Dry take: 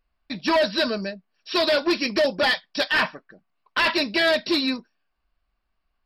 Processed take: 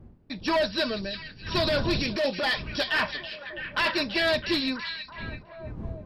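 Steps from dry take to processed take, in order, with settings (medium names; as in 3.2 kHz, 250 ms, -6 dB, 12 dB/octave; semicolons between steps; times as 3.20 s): wind noise 170 Hz -35 dBFS; 1.57–2.67 s: transient shaper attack -6 dB, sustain +4 dB; repeats whose band climbs or falls 329 ms, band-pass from 3.6 kHz, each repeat -0.7 oct, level -6 dB; trim -4.5 dB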